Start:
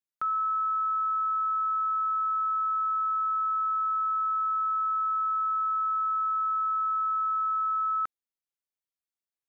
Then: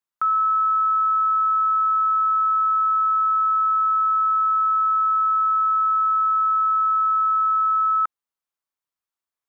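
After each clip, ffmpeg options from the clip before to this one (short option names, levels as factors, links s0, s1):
-af "equalizer=f=1100:w=1.4:g=9,volume=1.12"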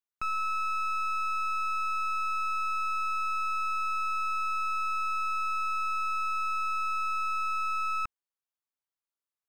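-af "aeval=exprs='clip(val(0),-1,0.02)':c=same,volume=0.422"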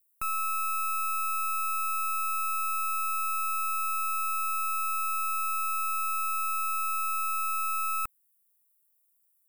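-af "aexciter=amount=15.4:drive=5:freq=8100"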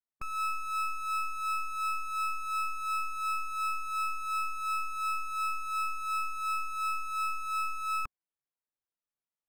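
-af "afftfilt=real='re*pow(10,9/40*sin(2*PI*(1.9*log(max(b,1)*sr/1024/100)/log(2)-(-2.8)*(pts-256)/sr)))':imag='im*pow(10,9/40*sin(2*PI*(1.9*log(max(b,1)*sr/1024/100)/log(2)-(-2.8)*(pts-256)/sr)))':win_size=1024:overlap=0.75,adynamicsmooth=sensitivity=7.5:basefreq=2000,volume=0.668"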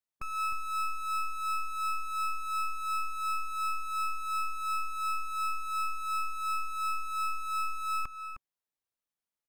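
-filter_complex "[0:a]asplit=2[s0][s1];[s1]adelay=309,volume=0.398,highshelf=f=4000:g=-6.95[s2];[s0][s2]amix=inputs=2:normalize=0"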